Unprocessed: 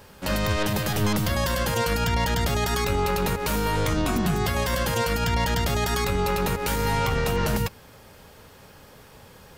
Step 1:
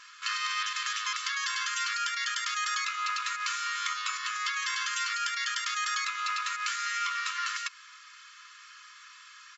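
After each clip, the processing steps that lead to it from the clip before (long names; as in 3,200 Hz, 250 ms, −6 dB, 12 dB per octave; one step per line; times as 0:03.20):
brick-wall band-pass 1,000–7,700 Hz
comb filter 2.3 ms, depth 61%
downward compressor 2 to 1, threshold −34 dBFS, peak gain reduction 5.5 dB
level +2.5 dB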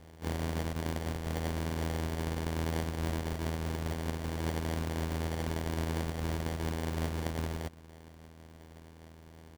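samples sorted by size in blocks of 32 samples
in parallel at −2.5 dB: brickwall limiter −23.5 dBFS, peak gain reduction 7.5 dB
on the sum: decimation without filtering 34×
level −6 dB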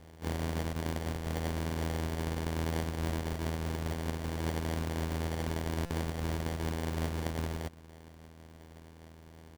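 buffer that repeats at 0:05.85, samples 256, times 9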